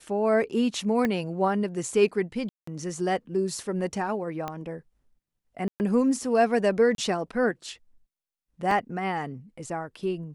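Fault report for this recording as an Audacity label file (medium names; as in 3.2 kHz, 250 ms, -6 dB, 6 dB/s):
1.050000	1.050000	pop -14 dBFS
2.490000	2.670000	dropout 184 ms
4.480000	4.480000	pop -18 dBFS
5.680000	5.800000	dropout 119 ms
6.950000	6.980000	dropout 32 ms
8.710000	8.710000	dropout 3.1 ms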